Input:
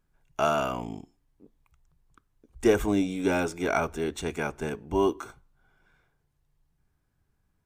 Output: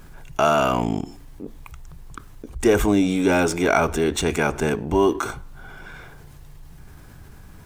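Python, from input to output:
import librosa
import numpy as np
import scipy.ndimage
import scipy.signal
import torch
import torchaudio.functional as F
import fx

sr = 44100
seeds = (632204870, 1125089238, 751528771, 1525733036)

p1 = np.sign(x) * np.maximum(np.abs(x) - 10.0 ** (-43.0 / 20.0), 0.0)
p2 = x + (p1 * 10.0 ** (-6.0 / 20.0))
y = fx.env_flatten(p2, sr, amount_pct=50)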